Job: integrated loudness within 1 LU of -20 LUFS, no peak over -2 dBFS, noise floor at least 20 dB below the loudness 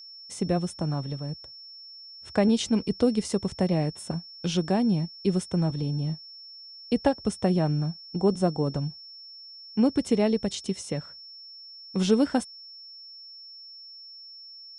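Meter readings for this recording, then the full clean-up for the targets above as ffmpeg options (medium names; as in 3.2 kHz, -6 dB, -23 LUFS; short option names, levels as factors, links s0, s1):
steady tone 5.4 kHz; tone level -43 dBFS; loudness -27.0 LUFS; peak level -9.5 dBFS; loudness target -20.0 LUFS
-> -af "bandreject=f=5400:w=30"
-af "volume=2.24"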